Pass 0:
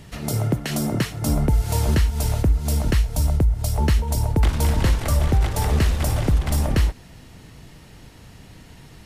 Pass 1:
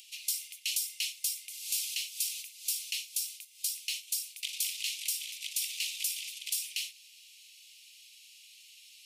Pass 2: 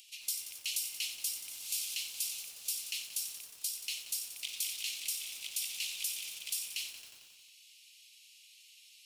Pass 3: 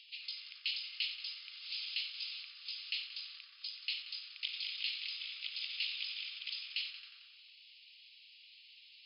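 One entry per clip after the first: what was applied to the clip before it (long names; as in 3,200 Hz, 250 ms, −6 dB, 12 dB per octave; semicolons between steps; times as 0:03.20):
Butterworth high-pass 2,400 Hz 72 dB per octave; upward compression, threshold −53 dBFS
feedback echo at a low word length 90 ms, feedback 80%, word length 8 bits, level −9.5 dB; level −3.5 dB
linear-phase brick-wall band-pass 1,100–5,200 Hz; level +2 dB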